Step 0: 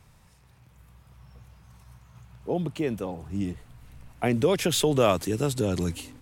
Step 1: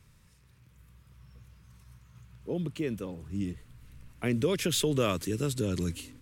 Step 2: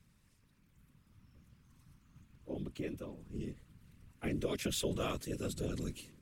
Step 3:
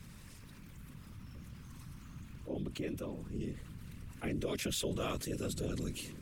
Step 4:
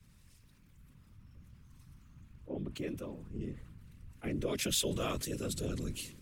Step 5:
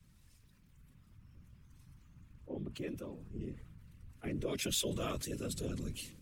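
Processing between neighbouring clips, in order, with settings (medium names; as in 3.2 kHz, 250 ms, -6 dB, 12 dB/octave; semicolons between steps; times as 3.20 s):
peaking EQ 760 Hz -14 dB 0.65 oct; trim -3 dB
whisper effect; trim -8 dB
level flattener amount 50%; trim -2 dB
three bands expanded up and down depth 70%
coarse spectral quantiser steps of 15 dB; trim -2 dB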